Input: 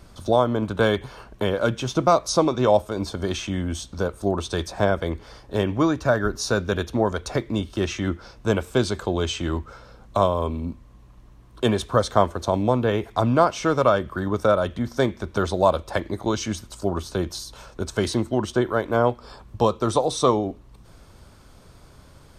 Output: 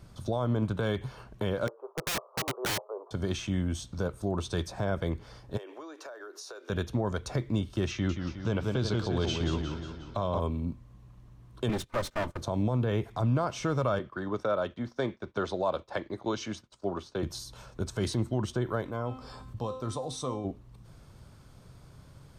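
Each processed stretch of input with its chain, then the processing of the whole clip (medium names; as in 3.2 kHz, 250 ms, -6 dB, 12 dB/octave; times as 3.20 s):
1.67–3.11 s: Chebyshev band-pass 400–1200 Hz, order 4 + integer overflow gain 19 dB
5.57–6.70 s: steep high-pass 340 Hz 48 dB/octave + compression 20:1, threshold -33 dBFS
7.91–10.40 s: resonant high shelf 6.7 kHz -8.5 dB, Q 1.5 + modulated delay 180 ms, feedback 53%, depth 117 cents, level -6.5 dB
11.69–12.41 s: comb filter that takes the minimum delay 3.3 ms + gate -35 dBFS, range -18 dB + tape noise reduction on one side only encoder only
13.99–17.23 s: expander -34 dBFS + three-band isolator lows -13 dB, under 240 Hz, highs -17 dB, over 6.2 kHz
18.84–20.45 s: feedback comb 260 Hz, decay 0.39 s, mix 80% + level flattener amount 50%
whole clip: peaking EQ 130 Hz +9.5 dB 0.99 oct; peak limiter -12 dBFS; trim -7 dB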